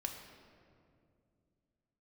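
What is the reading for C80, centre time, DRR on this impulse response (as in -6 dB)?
6.5 dB, 46 ms, 2.0 dB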